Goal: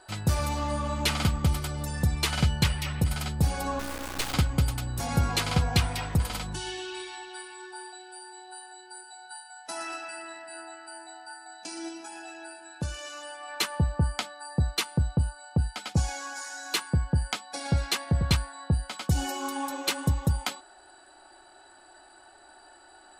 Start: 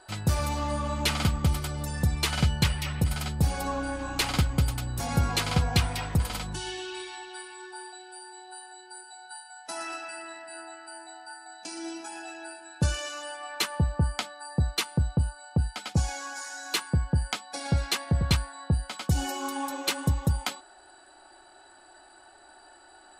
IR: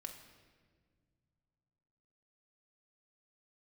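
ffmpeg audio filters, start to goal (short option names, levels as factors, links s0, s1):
-filter_complex "[0:a]asettb=1/sr,asplit=3[s0][s1][s2];[s0]atrim=end=3.794[s3];[s1]atrim=start=3.79:end=4.34,asetpts=PTS-STARTPTS,afade=t=in:d=0.004:c=qsin,afade=t=out:st=0.546:d=0.004:c=qsin,acrusher=bits=3:dc=4:mix=0:aa=0.000001[s4];[s2]atrim=start=4.336[s5];[s3][s4]acrossfade=d=0.004:c1=hsin:c2=qsin[s6];[s6][s5]acrossfade=d=0.004:c1=qsin:c2=hsin,asettb=1/sr,asplit=3[s7][s8][s9];[s7]atrim=end=11.884[s10];[s8]atrim=start=11.88:end=13.48,asetpts=PTS-STARTPTS,afade=t=in:d=0.004:c=qsin,afade=t=out:st=1.596:d=0.004:c=qsin,acompressor=threshold=0.00794:ratio=1.5[s11];[s9]atrim=start=13.476[s12];[s10][s11]acrossfade=d=0.004:c1=hsin:c2=qsin[s13];[s13][s12]acrossfade=d=0.004:c1=qsin:c2=hsin"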